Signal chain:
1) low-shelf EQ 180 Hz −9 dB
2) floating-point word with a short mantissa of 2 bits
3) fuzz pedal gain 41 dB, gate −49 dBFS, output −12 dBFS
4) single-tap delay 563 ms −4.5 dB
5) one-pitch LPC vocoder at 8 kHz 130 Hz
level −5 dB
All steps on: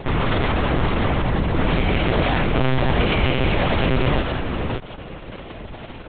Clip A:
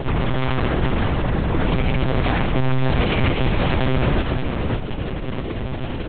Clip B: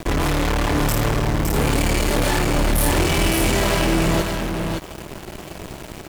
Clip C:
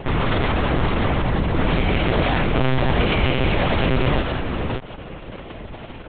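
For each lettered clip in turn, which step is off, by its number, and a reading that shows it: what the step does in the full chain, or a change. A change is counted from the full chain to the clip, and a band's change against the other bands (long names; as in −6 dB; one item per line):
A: 1, 125 Hz band +3.0 dB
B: 5, 4 kHz band +2.0 dB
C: 2, distortion level −20 dB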